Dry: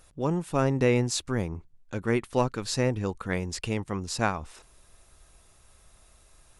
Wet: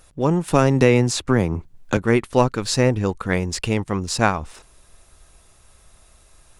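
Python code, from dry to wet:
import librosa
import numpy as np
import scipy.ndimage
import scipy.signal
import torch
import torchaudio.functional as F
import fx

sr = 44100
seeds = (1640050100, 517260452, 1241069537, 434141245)

p1 = fx.backlash(x, sr, play_db=-41.0)
p2 = x + (p1 * 10.0 ** (-7.0 / 20.0))
p3 = fx.band_squash(p2, sr, depth_pct=70, at=(0.48, 1.97))
y = p3 * 10.0 ** (5.0 / 20.0)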